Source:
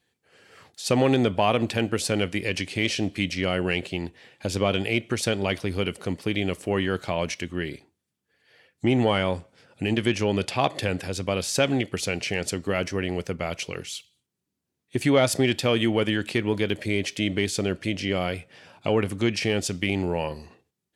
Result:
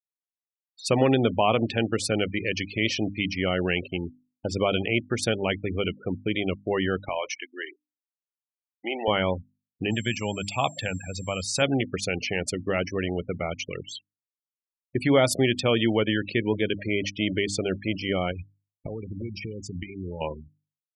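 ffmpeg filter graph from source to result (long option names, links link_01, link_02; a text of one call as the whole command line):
ffmpeg -i in.wav -filter_complex "[0:a]asettb=1/sr,asplit=3[link_01][link_02][link_03];[link_01]atrim=end=7.094[link_04];[link_02]atrim=start=7.09:end=9.08,asetpts=PTS-STARTPTS,afade=type=in:duration=0.004:curve=qsin,afade=type=out:start_time=1.986:duration=0.004:curve=qsin,highpass=590,asplit=2[link_05][link_06];[link_06]adelay=36,volume=-13.5dB[link_07];[link_05][link_07]amix=inputs=2:normalize=0,atrim=end_sample=87759[link_08];[link_03]atrim=start=9.076[link_09];[link_04][link_08]acrossfade=duration=0.004:curve1=hsin:curve2=qsin[link_10];[link_10][link_09]acrossfade=duration=0.004:curve1=qsin:curve2=hsin,asettb=1/sr,asplit=3[link_11][link_12][link_13];[link_11]atrim=end=9.914[link_14];[link_12]atrim=start=9.91:end=11.62,asetpts=PTS-STARTPTS,afade=type=in:duration=0.004:curve=qsin,afade=type=out:start_time=1.706:duration=0.004:curve=qsin,equalizer=frequency=370:width_type=o:width=1.1:gain=-9.5,aeval=exprs='val(0)+0.00562*sin(2*PI*7500*n/s)':channel_layout=same[link_15];[link_13]atrim=start=11.616[link_16];[link_14][link_15]acrossfade=duration=0.004:curve1=hsin:curve2=qsin[link_17];[link_17][link_16]acrossfade=duration=0.004:curve1=qsin:curve2=hsin,asettb=1/sr,asplit=3[link_18][link_19][link_20];[link_18]atrim=end=18.314[link_21];[link_19]atrim=start=18.31:end=20.21,asetpts=PTS-STARTPTS,afade=type=in:duration=0.004:curve=qsin,afade=type=out:start_time=1.896:duration=0.004:curve=qsin,acompressor=threshold=-31dB:ratio=8:attack=3.2:release=140:knee=1:detection=peak,lowshelf=frequency=120:gain=10.5[link_22];[link_20]atrim=start=20.206[link_23];[link_21][link_22]acrossfade=duration=0.004:curve1=hsin:curve2=qsin[link_24];[link_24][link_23]acrossfade=duration=0.004:curve1=qsin:curve2=hsin,afftfilt=real='re*gte(hypot(re,im),0.0355)':imag='im*gte(hypot(re,im),0.0355)':win_size=1024:overlap=0.75,bandreject=frequency=50:width_type=h:width=6,bandreject=frequency=100:width_type=h:width=6,bandreject=frequency=150:width_type=h:width=6,bandreject=frequency=200:width_type=h:width=6,bandreject=frequency=250:width_type=h:width=6,bandreject=frequency=300:width_type=h:width=6" out.wav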